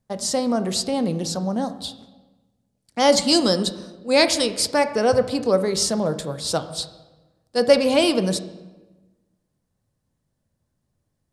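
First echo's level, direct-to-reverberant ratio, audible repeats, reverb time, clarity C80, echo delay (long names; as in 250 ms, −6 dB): no echo audible, 9.5 dB, no echo audible, 1.2 s, 14.0 dB, no echo audible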